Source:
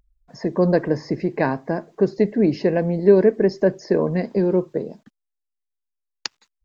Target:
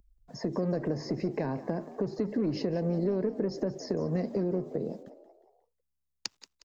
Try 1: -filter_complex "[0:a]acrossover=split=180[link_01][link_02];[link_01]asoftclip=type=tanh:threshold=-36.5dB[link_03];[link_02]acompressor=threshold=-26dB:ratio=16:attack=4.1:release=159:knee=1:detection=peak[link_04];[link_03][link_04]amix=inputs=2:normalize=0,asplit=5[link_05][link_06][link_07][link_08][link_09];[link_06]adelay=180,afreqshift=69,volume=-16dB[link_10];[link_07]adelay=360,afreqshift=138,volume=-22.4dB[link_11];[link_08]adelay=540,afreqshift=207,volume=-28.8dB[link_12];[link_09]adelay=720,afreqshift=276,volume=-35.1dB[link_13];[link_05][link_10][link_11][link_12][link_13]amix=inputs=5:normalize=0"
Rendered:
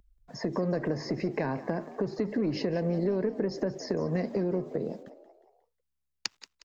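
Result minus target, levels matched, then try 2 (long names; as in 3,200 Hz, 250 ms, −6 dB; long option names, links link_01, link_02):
2,000 Hz band +6.0 dB
-filter_complex "[0:a]acrossover=split=180[link_01][link_02];[link_01]asoftclip=type=tanh:threshold=-36.5dB[link_03];[link_02]acompressor=threshold=-26dB:ratio=16:attack=4.1:release=159:knee=1:detection=peak,equalizer=frequency=1900:width_type=o:width=2.2:gain=-7[link_04];[link_03][link_04]amix=inputs=2:normalize=0,asplit=5[link_05][link_06][link_07][link_08][link_09];[link_06]adelay=180,afreqshift=69,volume=-16dB[link_10];[link_07]adelay=360,afreqshift=138,volume=-22.4dB[link_11];[link_08]adelay=540,afreqshift=207,volume=-28.8dB[link_12];[link_09]adelay=720,afreqshift=276,volume=-35.1dB[link_13];[link_05][link_10][link_11][link_12][link_13]amix=inputs=5:normalize=0"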